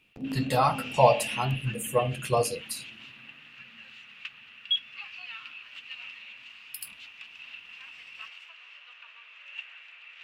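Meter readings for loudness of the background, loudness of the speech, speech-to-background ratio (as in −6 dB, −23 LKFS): −39.0 LKFS, −27.0 LKFS, 12.0 dB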